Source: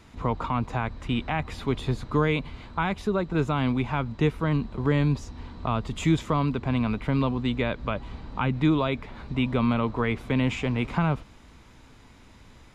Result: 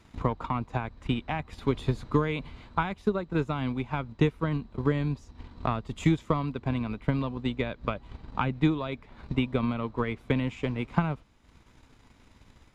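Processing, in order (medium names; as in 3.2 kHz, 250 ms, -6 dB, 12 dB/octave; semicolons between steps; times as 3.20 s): transient shaper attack +9 dB, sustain -6 dB, from 1.61 s sustain +2 dB, from 2.68 s sustain -6 dB; trim -6.5 dB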